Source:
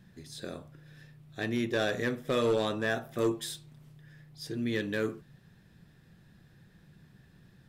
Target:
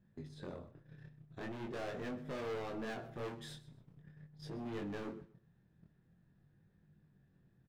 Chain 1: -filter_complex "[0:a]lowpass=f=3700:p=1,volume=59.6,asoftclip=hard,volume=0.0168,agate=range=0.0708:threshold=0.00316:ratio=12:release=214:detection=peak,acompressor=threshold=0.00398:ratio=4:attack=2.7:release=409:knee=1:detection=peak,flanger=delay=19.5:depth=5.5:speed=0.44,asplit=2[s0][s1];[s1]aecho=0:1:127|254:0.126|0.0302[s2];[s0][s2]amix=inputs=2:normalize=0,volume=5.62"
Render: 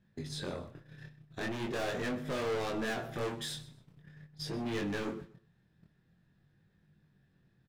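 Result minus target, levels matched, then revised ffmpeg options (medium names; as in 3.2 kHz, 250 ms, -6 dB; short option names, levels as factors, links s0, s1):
compression: peak gain reduction -7 dB; 4 kHz band +5.0 dB
-filter_complex "[0:a]lowpass=f=950:p=1,volume=59.6,asoftclip=hard,volume=0.0168,agate=range=0.0708:threshold=0.00316:ratio=12:release=214:detection=peak,acompressor=threshold=0.00141:ratio=4:attack=2.7:release=409:knee=1:detection=peak,flanger=delay=19.5:depth=5.5:speed=0.44,asplit=2[s0][s1];[s1]aecho=0:1:127|254:0.126|0.0302[s2];[s0][s2]amix=inputs=2:normalize=0,volume=5.62"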